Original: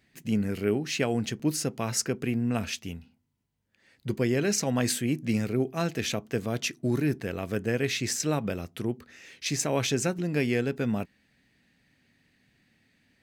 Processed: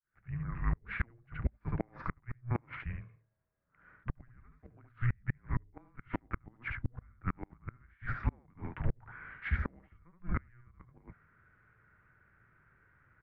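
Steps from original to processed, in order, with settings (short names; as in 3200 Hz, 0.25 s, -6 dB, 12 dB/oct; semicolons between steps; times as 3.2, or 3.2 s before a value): opening faded in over 1.07 s; mistuned SSB -360 Hz 250–2200 Hz; on a send: echo 72 ms -5 dB; on the sum: flipped gate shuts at -23 dBFS, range -35 dB; gain +3.5 dB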